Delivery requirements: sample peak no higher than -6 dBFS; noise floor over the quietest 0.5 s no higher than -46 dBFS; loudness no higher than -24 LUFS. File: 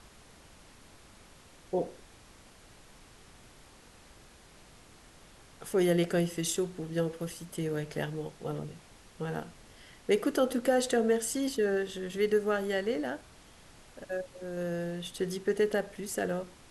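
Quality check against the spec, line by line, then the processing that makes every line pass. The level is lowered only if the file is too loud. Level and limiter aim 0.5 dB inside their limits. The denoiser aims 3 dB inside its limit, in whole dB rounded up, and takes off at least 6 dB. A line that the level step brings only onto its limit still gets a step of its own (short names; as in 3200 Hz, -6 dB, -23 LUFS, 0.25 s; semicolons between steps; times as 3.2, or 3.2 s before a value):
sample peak -15.0 dBFS: OK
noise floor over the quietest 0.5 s -55 dBFS: OK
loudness -32.0 LUFS: OK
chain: none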